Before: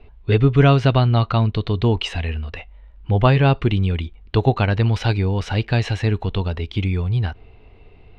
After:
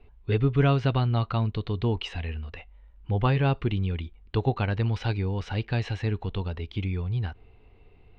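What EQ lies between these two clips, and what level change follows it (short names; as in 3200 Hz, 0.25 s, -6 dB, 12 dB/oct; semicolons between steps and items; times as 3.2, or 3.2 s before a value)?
air absorption 62 m; notch 640 Hz, Q 12; -8.0 dB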